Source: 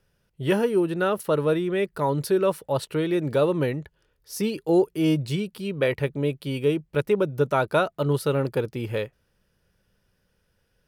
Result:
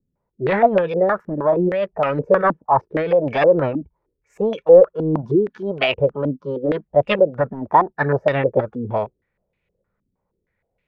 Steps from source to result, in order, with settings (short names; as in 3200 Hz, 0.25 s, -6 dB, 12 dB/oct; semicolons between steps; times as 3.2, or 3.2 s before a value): soft clip -16 dBFS, distortion -17 dB; spectral noise reduction 11 dB; formant shift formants +5 st; stepped low-pass 6.4 Hz 260–2600 Hz; gain +3.5 dB